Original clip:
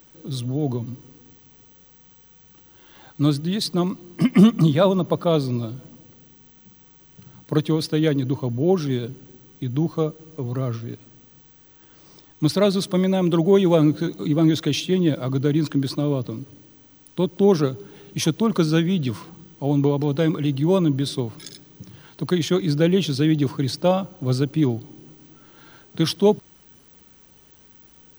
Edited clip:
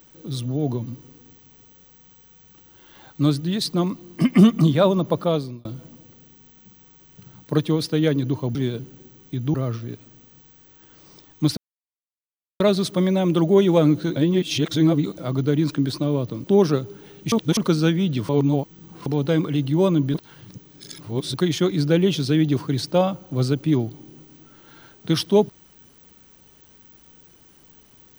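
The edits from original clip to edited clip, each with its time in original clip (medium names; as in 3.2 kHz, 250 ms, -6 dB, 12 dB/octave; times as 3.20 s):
5.23–5.65 s: fade out
8.55–8.84 s: delete
9.83–10.54 s: delete
12.57 s: insert silence 1.03 s
14.13–15.15 s: reverse
16.41–17.34 s: delete
18.22–18.47 s: reverse
19.19–19.96 s: reverse
21.04–22.24 s: reverse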